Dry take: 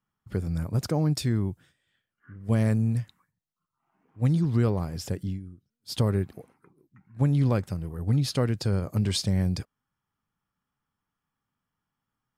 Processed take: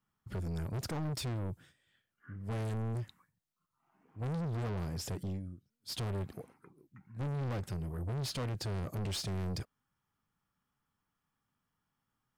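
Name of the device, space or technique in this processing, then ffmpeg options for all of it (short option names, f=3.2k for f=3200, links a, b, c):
saturation between pre-emphasis and de-emphasis: -af "highshelf=f=11k:g=10,asoftclip=type=tanh:threshold=-34dB,highshelf=f=11k:g=-10"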